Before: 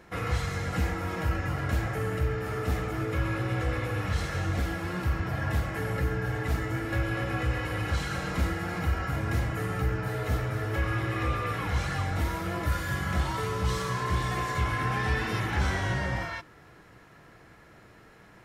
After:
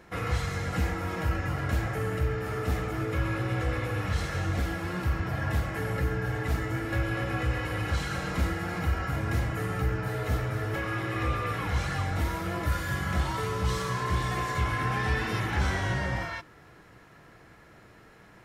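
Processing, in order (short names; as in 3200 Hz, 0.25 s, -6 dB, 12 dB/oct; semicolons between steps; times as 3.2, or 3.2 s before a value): 10.74–11.14 HPF 130 Hz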